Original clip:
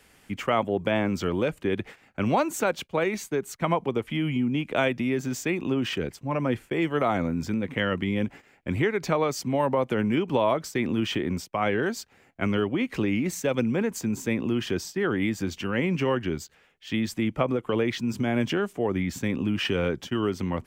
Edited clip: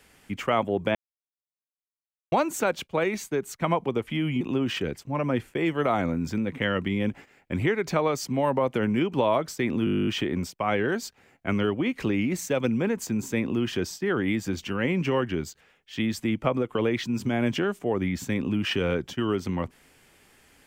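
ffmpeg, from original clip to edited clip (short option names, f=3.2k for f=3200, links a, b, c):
-filter_complex "[0:a]asplit=15[a][b][c][d][e][f][g][h][i][j][k][l][m][n][o];[a]atrim=end=0.95,asetpts=PTS-STARTPTS,afade=t=out:st=0.946:d=0.004:c=hsin[p];[b]atrim=start=0.95:end=2.32,asetpts=PTS-STARTPTS,volume=0[q];[c]atrim=start=2.32:end=4.412,asetpts=PTS-STARTPTS,afade=t=in:d=0.004:c=hsin[r];[d]atrim=start=5.568:end=11.032[s];[e]atrim=start=11.008:end=11.032[t];[f]atrim=start=11.008:end=11.032[u];[g]atrim=start=11.008:end=11.032[v];[h]atrim=start=11.008:end=11.032[w];[i]atrim=start=11.008:end=11.032[x];[j]atrim=start=11.008:end=11.032[y];[k]atrim=start=11.008:end=11.032[z];[l]atrim=start=11.008:end=11.032[aa];[m]atrim=start=11.008:end=11.032[ab];[n]atrim=start=11.008:end=11.032[ac];[o]atrim=start=11.008[ad];[p][q][r]concat=n=3:v=0:a=1[ae];[ae][s]acrossfade=d=0.004:c1=hsin:c2=hsin[af];[af][t]acrossfade=d=0.004:c1=hsin:c2=hsin[ag];[ag][u]acrossfade=d=0.004:c1=hsin:c2=hsin[ah];[ah][v]acrossfade=d=0.004:c1=hsin:c2=hsin[ai];[ai][w]acrossfade=d=0.004:c1=hsin:c2=hsin[aj];[aj][x]acrossfade=d=0.004:c1=hsin:c2=hsin[ak];[ak][y]acrossfade=d=0.004:c1=hsin:c2=hsin[al];[al][z]acrossfade=d=0.004:c1=hsin:c2=hsin[am];[am][aa]acrossfade=d=0.004:c1=hsin:c2=hsin[an];[an][ab]acrossfade=d=0.004:c1=hsin:c2=hsin[ao];[ao][ac]acrossfade=d=0.004:c1=hsin:c2=hsin[ap];[ap][ad]acrossfade=d=0.004:c1=hsin:c2=hsin"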